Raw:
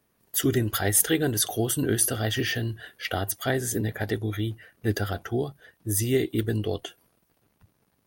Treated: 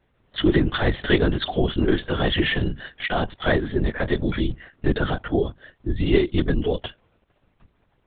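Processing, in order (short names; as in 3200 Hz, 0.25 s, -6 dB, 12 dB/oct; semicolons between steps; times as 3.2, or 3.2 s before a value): LPC vocoder at 8 kHz whisper; gain +5.5 dB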